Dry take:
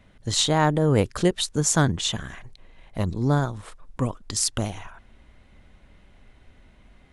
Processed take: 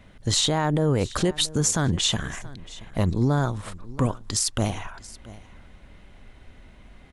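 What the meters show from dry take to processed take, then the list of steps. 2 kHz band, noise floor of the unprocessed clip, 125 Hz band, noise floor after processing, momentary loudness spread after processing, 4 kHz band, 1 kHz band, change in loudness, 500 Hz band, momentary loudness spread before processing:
-1.5 dB, -55 dBFS, 0.0 dB, -50 dBFS, 16 LU, +1.5 dB, -2.5 dB, -0.5 dB, -1.5 dB, 16 LU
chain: limiter -17 dBFS, peak gain reduction 11.5 dB; on a send: echo 0.678 s -19.5 dB; on the sum: gain +4.5 dB

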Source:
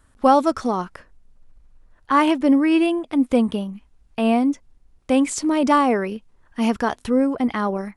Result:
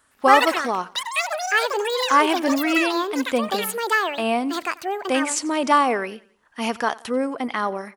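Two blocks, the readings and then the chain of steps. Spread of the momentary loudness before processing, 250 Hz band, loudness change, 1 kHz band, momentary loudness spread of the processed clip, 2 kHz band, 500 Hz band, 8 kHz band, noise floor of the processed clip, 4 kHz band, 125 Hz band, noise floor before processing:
13 LU, -6.5 dB, -1.5 dB, +2.0 dB, 9 LU, +8.0 dB, -0.5 dB, +5.0 dB, -60 dBFS, +8.0 dB, n/a, -58 dBFS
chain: HPF 800 Hz 6 dB/oct; echoes that change speed 0.111 s, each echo +7 st, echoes 3; on a send: feedback echo 90 ms, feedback 43%, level -22 dB; on the sum: gain +3 dB

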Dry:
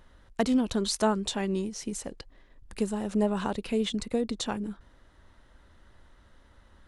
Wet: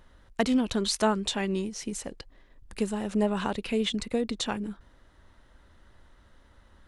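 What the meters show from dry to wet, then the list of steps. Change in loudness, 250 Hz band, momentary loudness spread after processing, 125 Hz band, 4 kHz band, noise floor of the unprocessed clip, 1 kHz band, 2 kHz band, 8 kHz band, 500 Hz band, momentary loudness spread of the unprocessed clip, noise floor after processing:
+0.5 dB, 0.0 dB, 13 LU, 0.0 dB, +3.0 dB, -59 dBFS, +1.0 dB, +3.5 dB, +0.5 dB, +0.5 dB, 12 LU, -59 dBFS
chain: dynamic EQ 2400 Hz, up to +5 dB, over -48 dBFS, Q 0.9

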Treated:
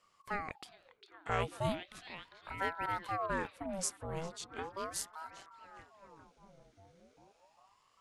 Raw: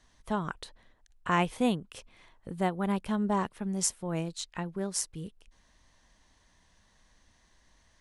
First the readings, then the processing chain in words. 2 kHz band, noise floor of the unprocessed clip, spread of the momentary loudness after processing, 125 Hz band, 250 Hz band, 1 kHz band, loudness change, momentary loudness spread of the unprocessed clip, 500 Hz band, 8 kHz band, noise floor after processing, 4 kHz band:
-2.0 dB, -66 dBFS, 19 LU, -8.5 dB, -14.5 dB, -4.5 dB, -7.5 dB, 16 LU, -5.5 dB, -7.5 dB, -71 dBFS, -6.0 dB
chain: on a send: delay with a stepping band-pass 0.402 s, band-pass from 2900 Hz, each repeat -0.7 oct, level -5 dB; on the sum: ring modulator with a swept carrier 730 Hz, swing 60%, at 0.37 Hz; gain -4.5 dB

